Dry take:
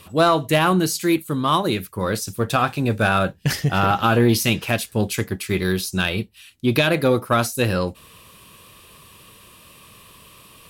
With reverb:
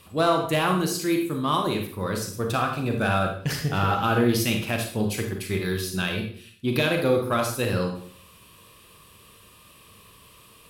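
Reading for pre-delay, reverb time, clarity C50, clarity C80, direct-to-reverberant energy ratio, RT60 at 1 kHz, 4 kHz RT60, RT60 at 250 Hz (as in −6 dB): 34 ms, 0.55 s, 5.5 dB, 10.0 dB, 3.0 dB, 0.50 s, 0.45 s, 0.55 s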